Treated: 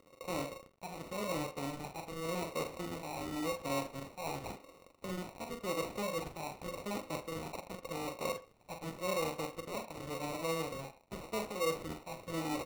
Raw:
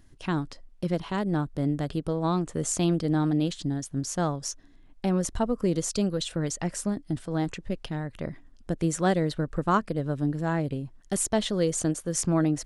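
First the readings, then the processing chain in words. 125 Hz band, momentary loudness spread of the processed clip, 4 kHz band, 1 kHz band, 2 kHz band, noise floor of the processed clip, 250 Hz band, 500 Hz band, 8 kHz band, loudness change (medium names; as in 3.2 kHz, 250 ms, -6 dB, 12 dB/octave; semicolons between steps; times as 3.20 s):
-17.5 dB, 10 LU, -7.5 dB, -7.5 dB, -5.5 dB, -63 dBFS, -15.5 dB, -8.0 dB, -15.0 dB, -11.5 dB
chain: square wave that keeps the level; high-pass 300 Hz 6 dB/octave; de-esser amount 40%; peaking EQ 520 Hz +15 dB 0.26 oct; reverse; compression 6:1, threshold -30 dBFS, peak gain reduction 17.5 dB; reverse; overdrive pedal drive 13 dB, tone 1.9 kHz, clips at -19 dBFS; feedback echo behind a high-pass 1194 ms, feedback 35%, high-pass 5.4 kHz, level -9.5 dB; phase shifter stages 6, 0.89 Hz, lowest notch 420–3100 Hz; doubling 43 ms -6 dB; sample-and-hold 27×; speakerphone echo 80 ms, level -14 dB; trim -5 dB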